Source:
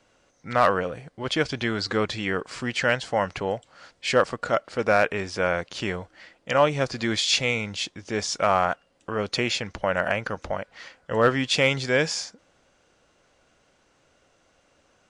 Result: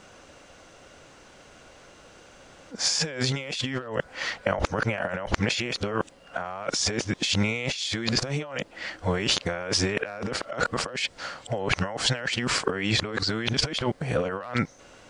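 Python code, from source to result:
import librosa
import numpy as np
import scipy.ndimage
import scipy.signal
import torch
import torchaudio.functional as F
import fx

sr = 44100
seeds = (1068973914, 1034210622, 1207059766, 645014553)

y = x[::-1].copy()
y = fx.over_compress(y, sr, threshold_db=-34.0, ratio=-1.0)
y = y * 10.0 ** (5.0 / 20.0)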